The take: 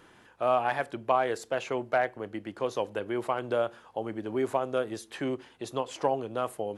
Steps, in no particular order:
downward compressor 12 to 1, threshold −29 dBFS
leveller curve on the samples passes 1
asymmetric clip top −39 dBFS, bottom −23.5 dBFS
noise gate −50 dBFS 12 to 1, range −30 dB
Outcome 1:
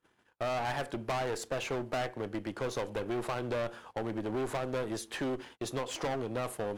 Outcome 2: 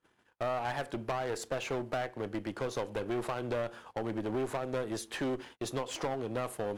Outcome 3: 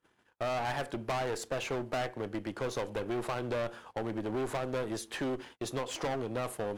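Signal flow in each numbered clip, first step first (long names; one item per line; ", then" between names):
asymmetric clip, then leveller curve on the samples, then noise gate, then downward compressor
downward compressor, then asymmetric clip, then leveller curve on the samples, then noise gate
asymmetric clip, then leveller curve on the samples, then downward compressor, then noise gate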